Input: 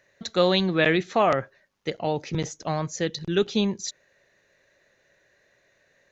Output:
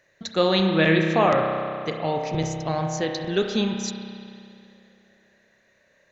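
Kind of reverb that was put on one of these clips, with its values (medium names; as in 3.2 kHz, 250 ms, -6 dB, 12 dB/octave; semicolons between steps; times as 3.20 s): spring tank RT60 2.5 s, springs 31 ms, chirp 40 ms, DRR 2.5 dB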